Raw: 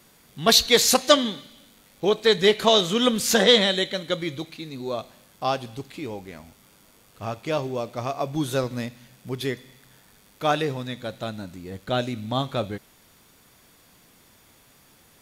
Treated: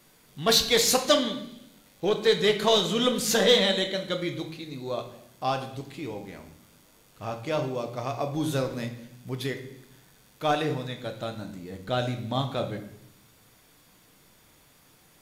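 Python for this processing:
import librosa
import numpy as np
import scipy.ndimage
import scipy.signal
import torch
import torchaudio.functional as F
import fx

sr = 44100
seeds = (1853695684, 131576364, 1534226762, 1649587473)

p1 = np.clip(x, -10.0 ** (-17.0 / 20.0), 10.0 ** (-17.0 / 20.0))
p2 = x + F.gain(torch.from_numpy(p1), -5.0).numpy()
p3 = fx.room_shoebox(p2, sr, seeds[0], volume_m3=150.0, walls='mixed', distance_m=0.5)
y = F.gain(torch.from_numpy(p3), -7.5).numpy()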